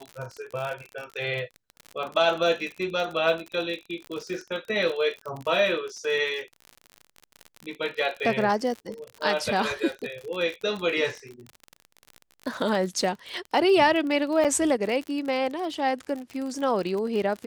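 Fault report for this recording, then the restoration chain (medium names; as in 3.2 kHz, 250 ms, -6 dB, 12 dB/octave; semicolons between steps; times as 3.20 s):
crackle 47 per s -31 dBFS
14.44–14.45 s: dropout 6.9 ms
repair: de-click; interpolate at 14.44 s, 6.9 ms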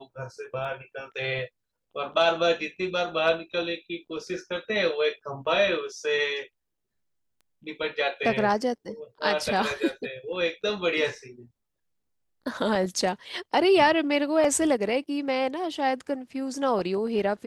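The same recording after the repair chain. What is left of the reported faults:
nothing left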